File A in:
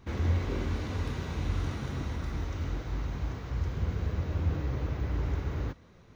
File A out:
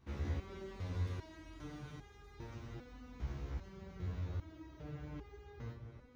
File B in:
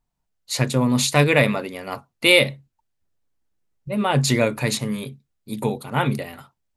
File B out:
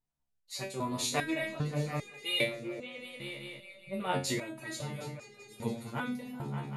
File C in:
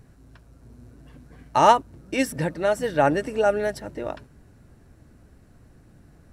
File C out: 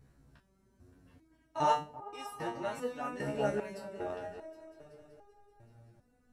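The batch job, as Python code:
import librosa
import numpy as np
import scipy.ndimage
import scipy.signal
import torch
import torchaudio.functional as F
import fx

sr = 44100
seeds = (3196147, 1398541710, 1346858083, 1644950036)

y = fx.echo_opening(x, sr, ms=191, hz=200, octaves=2, feedback_pct=70, wet_db=-6)
y = fx.resonator_held(y, sr, hz=2.5, low_hz=70.0, high_hz=410.0)
y = y * librosa.db_to_amplitude(-2.0)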